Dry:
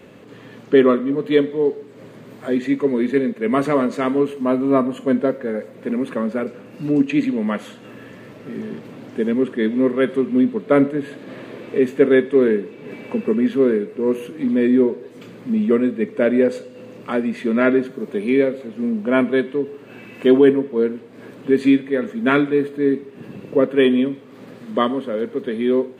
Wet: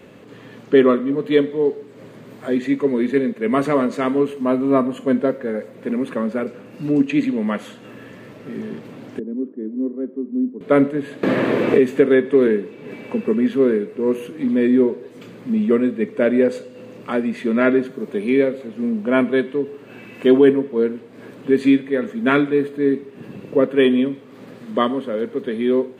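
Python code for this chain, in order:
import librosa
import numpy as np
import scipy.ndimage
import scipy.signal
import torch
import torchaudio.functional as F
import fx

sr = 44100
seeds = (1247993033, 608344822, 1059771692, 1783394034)

y = fx.ladder_bandpass(x, sr, hz=310.0, resonance_pct=55, at=(9.19, 10.61))
y = fx.band_squash(y, sr, depth_pct=100, at=(11.23, 12.47))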